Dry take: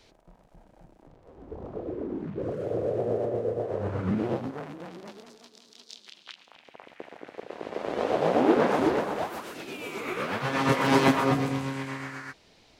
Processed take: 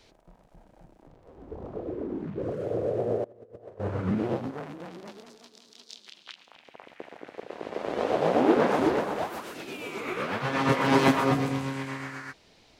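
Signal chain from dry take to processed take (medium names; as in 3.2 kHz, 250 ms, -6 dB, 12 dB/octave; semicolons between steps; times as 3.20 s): 3.24–3.80 s: compressor with a negative ratio -43 dBFS, ratio -0.5; 9.82–10.98 s: treble shelf 10 kHz -> 5.4 kHz -5.5 dB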